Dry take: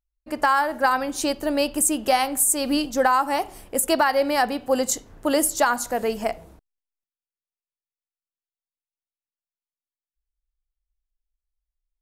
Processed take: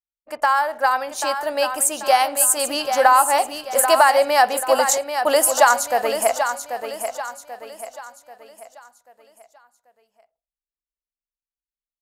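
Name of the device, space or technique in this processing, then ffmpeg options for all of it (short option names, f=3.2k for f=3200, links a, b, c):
voice memo with heavy noise removal: -af "highpass=f=130:p=1,lowshelf=f=450:t=q:w=1.5:g=-10,anlmdn=0.0398,dynaudnorm=f=260:g=17:m=10dB,aecho=1:1:787|1574|2361|3148|3935:0.398|0.163|0.0669|0.0274|0.0112"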